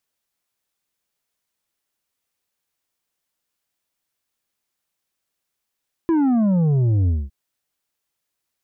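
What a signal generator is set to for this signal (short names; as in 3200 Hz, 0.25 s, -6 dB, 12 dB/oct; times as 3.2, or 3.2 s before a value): sub drop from 340 Hz, over 1.21 s, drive 6.5 dB, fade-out 0.22 s, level -15.5 dB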